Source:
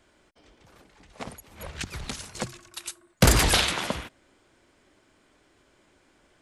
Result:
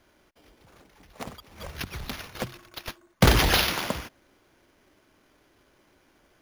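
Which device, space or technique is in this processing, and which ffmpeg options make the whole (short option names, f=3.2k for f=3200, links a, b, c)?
crushed at another speed: -af "asetrate=22050,aresample=44100,acrusher=samples=11:mix=1:aa=0.000001,asetrate=88200,aresample=44100"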